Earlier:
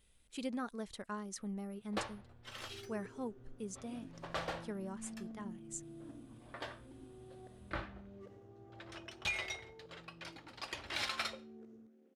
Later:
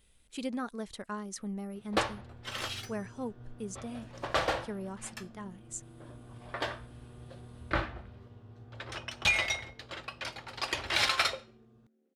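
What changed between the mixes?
speech +4.0 dB; first sound +10.5 dB; second sound -7.5 dB

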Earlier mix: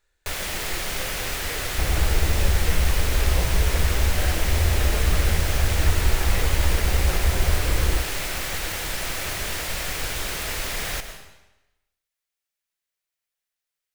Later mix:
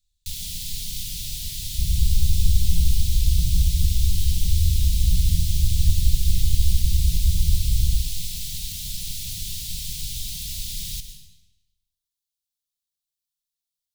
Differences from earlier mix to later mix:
second sound: send +10.5 dB; master: add Chebyshev band-stop 170–3600 Hz, order 3

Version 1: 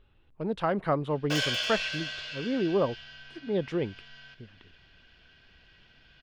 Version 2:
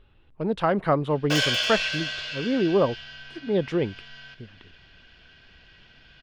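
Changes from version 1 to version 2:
speech +5.0 dB; background +5.5 dB

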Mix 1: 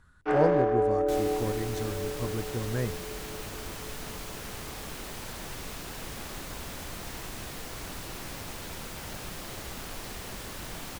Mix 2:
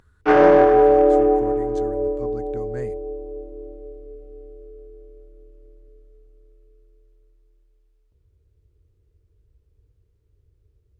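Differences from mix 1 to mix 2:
speech -3.5 dB; first sound +12.0 dB; second sound: muted

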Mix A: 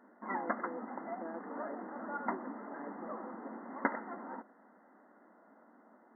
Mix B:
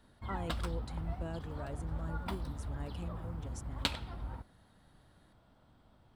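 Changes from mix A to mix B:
background -7.0 dB; master: remove brick-wall FIR band-pass 200–2100 Hz

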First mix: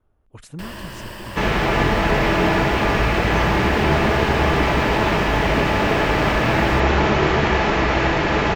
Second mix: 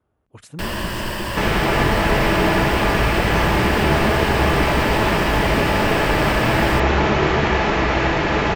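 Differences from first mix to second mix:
speech: add high-pass 87 Hz; first sound +9.0 dB

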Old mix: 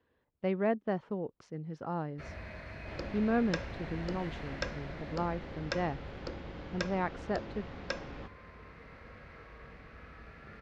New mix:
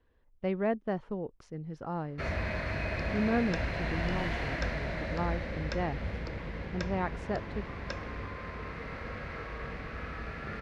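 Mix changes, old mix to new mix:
speech: remove band-pass 110–7300 Hz; first sound +11.5 dB; second sound -3.5 dB

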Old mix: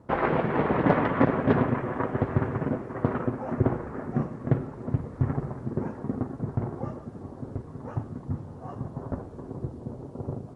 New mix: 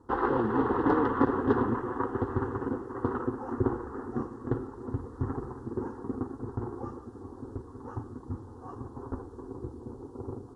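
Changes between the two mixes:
speech +10.5 dB; master: add static phaser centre 620 Hz, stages 6

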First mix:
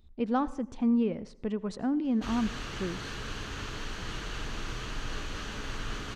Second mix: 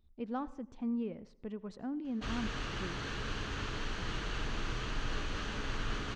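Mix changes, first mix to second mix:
speech -9.5 dB; master: add distance through air 64 m

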